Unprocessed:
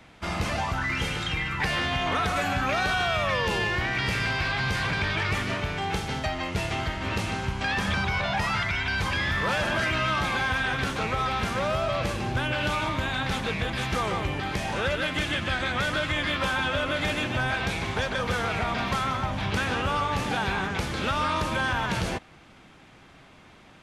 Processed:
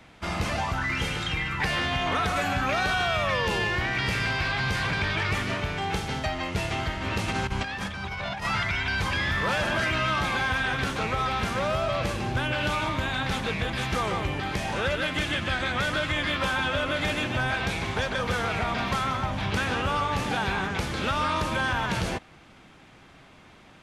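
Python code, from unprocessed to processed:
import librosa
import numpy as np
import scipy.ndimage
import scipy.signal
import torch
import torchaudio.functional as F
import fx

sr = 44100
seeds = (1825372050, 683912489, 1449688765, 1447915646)

y = fx.over_compress(x, sr, threshold_db=-30.0, ratio=-0.5, at=(7.28, 8.45))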